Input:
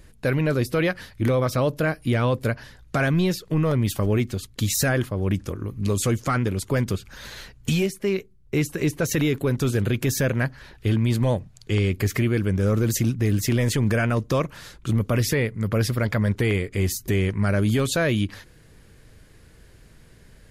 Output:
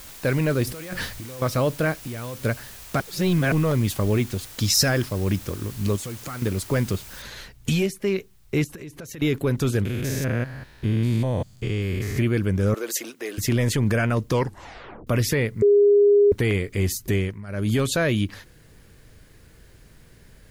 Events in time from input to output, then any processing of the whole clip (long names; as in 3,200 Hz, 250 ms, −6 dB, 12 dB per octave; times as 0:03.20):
0:00.67–0:01.42: compressor whose output falls as the input rises −34 dBFS
0:01.95–0:02.41: downward compressor 16 to 1, threshold −29 dBFS
0:03.00–0:03.52: reverse
0:04.60–0:05.36: parametric band 5,200 Hz +14.5 dB 0.29 octaves
0:05.96–0:06.42: downward compressor, threshold −31 dBFS
0:07.22: noise floor change −43 dB −66 dB
0:08.64–0:09.22: downward compressor 8 to 1, threshold −35 dBFS
0:09.85–0:12.18: spectrum averaged block by block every 200 ms
0:12.74–0:13.38: high-pass filter 400 Hz 24 dB per octave
0:14.30: tape stop 0.77 s
0:15.62–0:16.32: beep over 408 Hz −12 dBFS
0:17.15–0:17.74: duck −16.5 dB, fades 0.27 s